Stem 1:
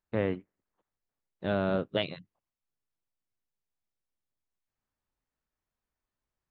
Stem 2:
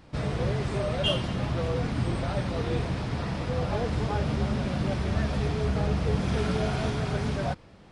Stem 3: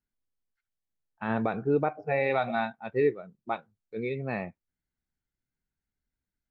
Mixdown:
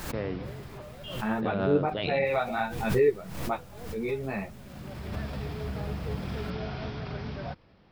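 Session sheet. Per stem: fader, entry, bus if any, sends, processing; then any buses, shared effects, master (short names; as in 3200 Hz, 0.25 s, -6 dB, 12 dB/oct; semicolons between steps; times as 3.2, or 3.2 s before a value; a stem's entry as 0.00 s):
-6.0 dB, 0.00 s, no send, fast leveller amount 70%
-7.0 dB, 0.00 s, no send, elliptic low-pass 5300 Hz; vibrato 3.2 Hz 11 cents; auto duck -13 dB, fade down 1.35 s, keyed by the third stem
+2.0 dB, 0.00 s, no send, ensemble effect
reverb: off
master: backwards sustainer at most 58 dB/s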